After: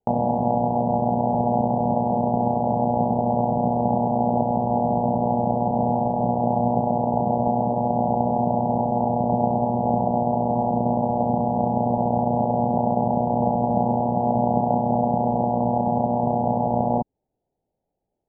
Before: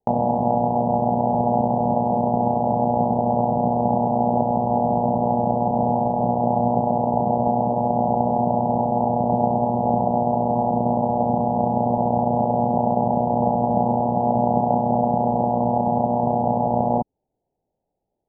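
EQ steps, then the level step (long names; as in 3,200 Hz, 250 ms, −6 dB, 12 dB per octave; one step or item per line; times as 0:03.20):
high-frequency loss of the air 490 metres
0.0 dB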